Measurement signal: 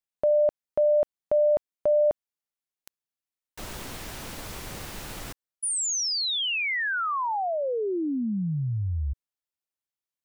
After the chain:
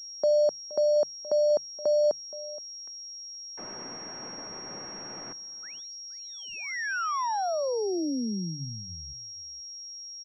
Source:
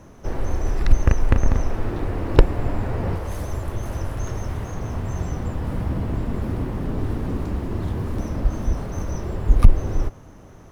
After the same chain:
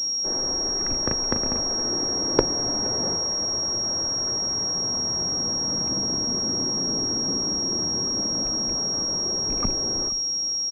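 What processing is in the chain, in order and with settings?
loose part that buzzes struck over −15 dBFS, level −25 dBFS
three-way crossover with the lows and the highs turned down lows −21 dB, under 160 Hz, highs −19 dB, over 2,200 Hz
mains-hum notches 50/100/150 Hz
on a send: single-tap delay 472 ms −18.5 dB
on the sum: switching amplifier with a slow clock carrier 5,600 Hz
level −1 dB

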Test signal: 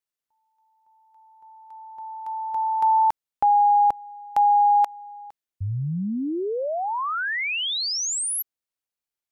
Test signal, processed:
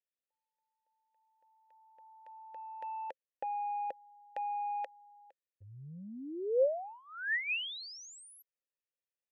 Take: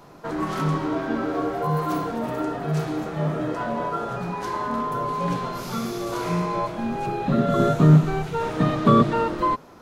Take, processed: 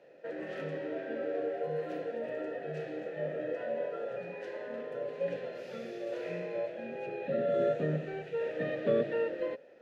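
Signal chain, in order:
dynamic equaliser 140 Hz, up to +4 dB, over −35 dBFS, Q 1.4
in parallel at −10 dB: soft clipping −12.5 dBFS
on the sum: formant filter e

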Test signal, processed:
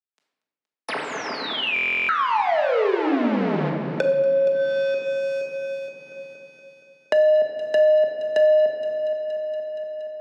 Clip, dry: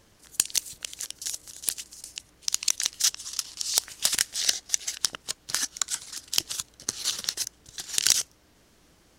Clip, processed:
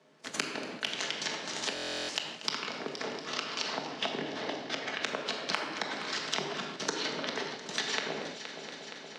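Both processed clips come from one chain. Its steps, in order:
each half-wave held at its own peak
treble cut that deepens with the level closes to 520 Hz, closed at −21.5 dBFS
in parallel at −4 dB: wrap-around overflow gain 11.5 dB
on the sum: dynamic equaliser 1,200 Hz, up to −3 dB, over −42 dBFS, Q 1.6
Bessel high-pass filter 220 Hz, order 2
frequency shifter +54 Hz
rectangular room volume 710 cubic metres, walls mixed, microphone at 1.5 metres
noise gate −42 dBFS, range −33 dB
high-frequency loss of the air 99 metres
echo machine with several playback heads 235 ms, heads first and second, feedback 47%, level −19 dB
buffer that repeats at 0:01.74, samples 1,024, times 14
multiband upward and downward compressor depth 70%

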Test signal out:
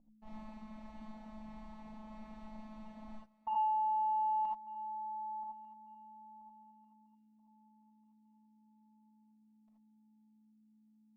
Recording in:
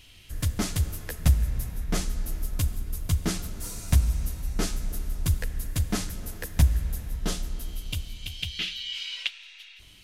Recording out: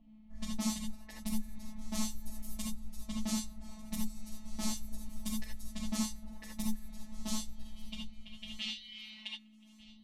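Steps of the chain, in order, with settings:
mains hum 60 Hz, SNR 22 dB
mains-hum notches 60/120 Hz
reverb reduction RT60 0.87 s
parametric band 1,700 Hz +13.5 dB 0.29 octaves
soft clipping −19.5 dBFS
phases set to zero 216 Hz
low-pass that shuts in the quiet parts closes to 640 Hz, open at −27 dBFS
phaser with its sweep stopped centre 430 Hz, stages 6
feedback echo with a high-pass in the loop 1,195 ms, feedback 34%, high-pass 190 Hz, level −21 dB
reverb whose tail is shaped and stops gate 100 ms rising, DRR −2 dB
level −4 dB

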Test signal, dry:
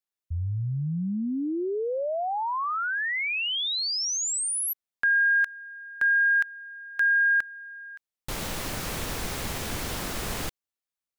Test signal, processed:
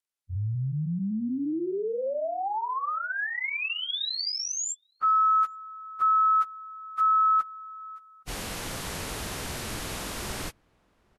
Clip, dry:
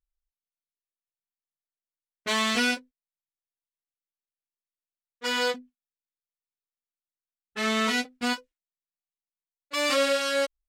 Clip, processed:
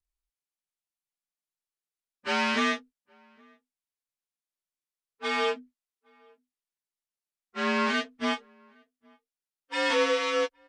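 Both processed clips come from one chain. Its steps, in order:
partials spread apart or drawn together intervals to 88%
slap from a distant wall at 140 metres, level −30 dB

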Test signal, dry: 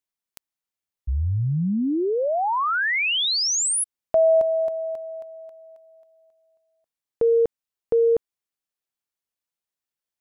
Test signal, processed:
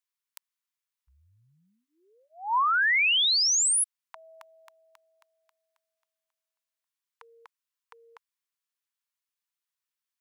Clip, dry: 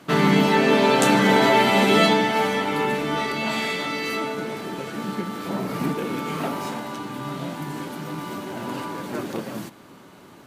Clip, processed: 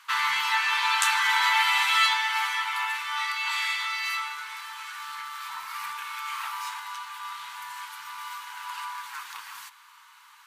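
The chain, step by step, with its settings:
elliptic high-pass filter 960 Hz, stop band 40 dB

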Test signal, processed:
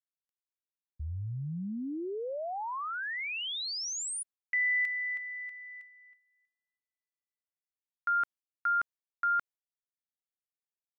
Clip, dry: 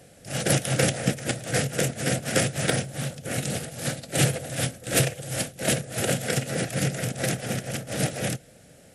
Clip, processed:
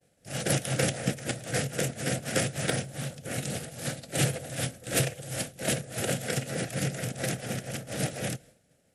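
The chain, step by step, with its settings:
downward expander −43 dBFS
level −4.5 dB

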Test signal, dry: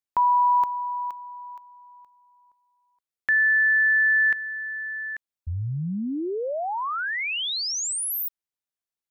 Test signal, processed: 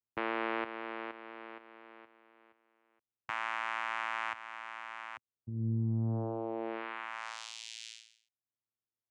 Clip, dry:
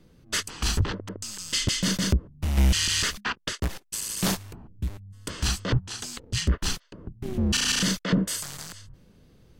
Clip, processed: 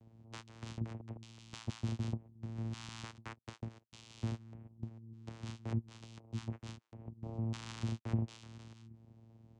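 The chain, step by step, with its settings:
downward compressor 1.5 to 1, threshold −47 dBFS
channel vocoder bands 4, saw 113 Hz
level −3.5 dB

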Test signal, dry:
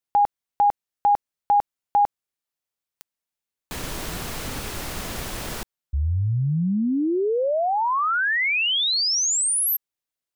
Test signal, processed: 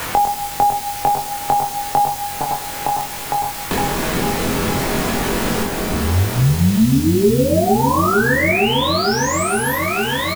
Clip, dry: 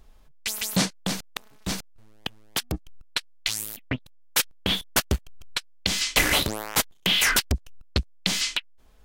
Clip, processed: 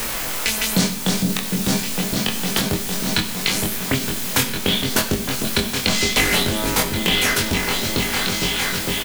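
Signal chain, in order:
fade-out on the ending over 2.60 s
in parallel at +2 dB: downward compressor, threshold −37 dBFS
on the sum: hollow resonant body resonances 230/390 Hz, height 10 dB, ringing for 100 ms
on a send: echo whose low-pass opens from repeat to repeat 457 ms, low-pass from 400 Hz, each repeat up 2 octaves, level −3 dB
on the sum: bit-depth reduction 6 bits, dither triangular
double-tracking delay 22 ms −2 dB
coupled-rooms reverb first 0.55 s, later 4.9 s, from −21 dB, DRR 5.5 dB
multiband upward and downward compressor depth 70%

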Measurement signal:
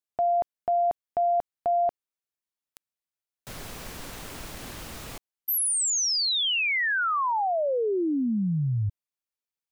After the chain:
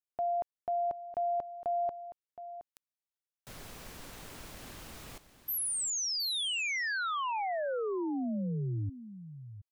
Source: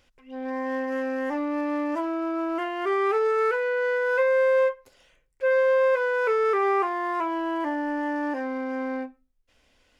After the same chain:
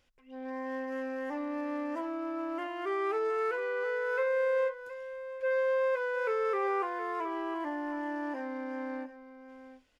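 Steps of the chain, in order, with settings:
single-tap delay 719 ms −13 dB
level −8 dB

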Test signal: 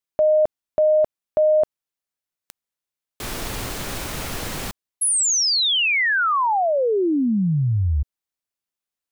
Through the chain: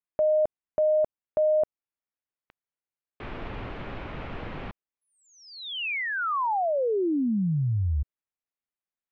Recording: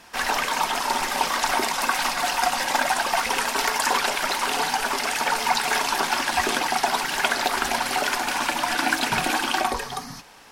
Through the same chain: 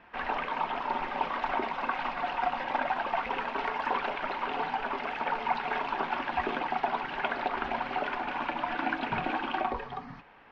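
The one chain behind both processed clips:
low-pass filter 2,600 Hz 24 dB per octave
dynamic equaliser 1,800 Hz, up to −5 dB, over −39 dBFS, Q 1.5
level −5.5 dB

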